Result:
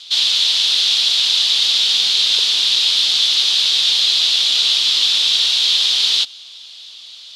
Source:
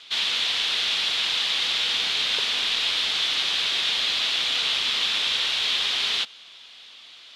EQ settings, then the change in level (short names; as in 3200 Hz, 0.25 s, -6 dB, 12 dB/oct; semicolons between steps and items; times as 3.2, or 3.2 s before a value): resonant high shelf 2900 Hz +11 dB, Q 1.5; -1.0 dB